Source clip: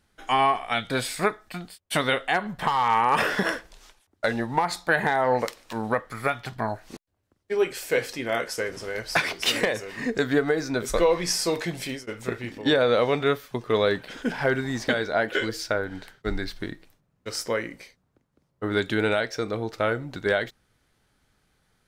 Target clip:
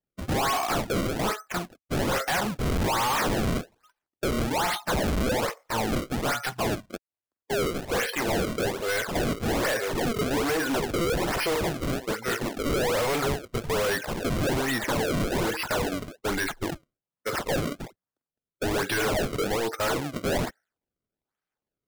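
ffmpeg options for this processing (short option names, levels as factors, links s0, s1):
-filter_complex "[0:a]aeval=exprs='if(lt(val(0),0),0.708*val(0),val(0))':c=same,equalizer=f=2100:w=0.47:g=4,asplit=2[s0][s1];[s1]highpass=f=720:p=1,volume=11.2,asoftclip=type=tanh:threshold=0.473[s2];[s0][s2]amix=inputs=2:normalize=0,lowpass=f=1800:p=1,volume=0.501,afftdn=nr=32:nf=-30,acrusher=samples=29:mix=1:aa=0.000001:lfo=1:lforange=46.4:lforate=1.2,volume=15.8,asoftclip=hard,volume=0.0631"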